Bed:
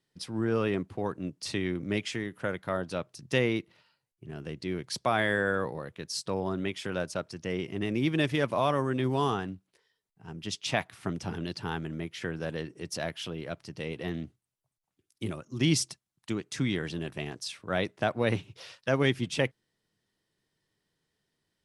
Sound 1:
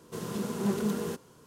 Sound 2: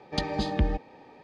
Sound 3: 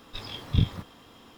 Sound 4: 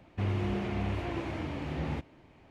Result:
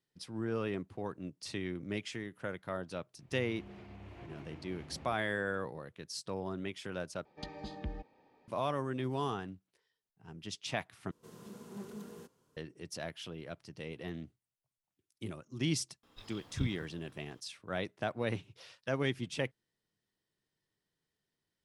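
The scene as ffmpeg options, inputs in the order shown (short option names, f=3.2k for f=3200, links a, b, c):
-filter_complex "[0:a]volume=-7.5dB[a];[4:a]alimiter=level_in=5.5dB:limit=-24dB:level=0:latency=1:release=119,volume=-5.5dB[b];[a]asplit=3[c][d][e];[c]atrim=end=7.254[f];[2:a]atrim=end=1.23,asetpts=PTS-STARTPTS,volume=-15.5dB[g];[d]atrim=start=8.476:end=11.114[h];[1:a]atrim=end=1.46,asetpts=PTS-STARTPTS,volume=-16.5dB[i];[e]atrim=start=12.566[j];[b]atrim=end=2.5,asetpts=PTS-STARTPTS,volume=-12.5dB,afade=t=in:d=0.1,afade=t=out:st=2.4:d=0.1,adelay=3140[k];[3:a]atrim=end=1.37,asetpts=PTS-STARTPTS,volume=-14.5dB,afade=t=in:d=0.004:c=hsin,afade=t=out:st=1.366:d=0.004:c=hsin,adelay=16030[l];[f][g]acrossfade=d=0.004:c1=hsin:c2=hsin[m];[m][h]acrossfade=d=0.004:c1=hsin:c2=hsin[n];[n][i]acrossfade=d=0.004:c1=hsin:c2=hsin[o];[o][j]acrossfade=d=0.004:c1=hsin:c2=hsin[p];[p][k][l]amix=inputs=3:normalize=0"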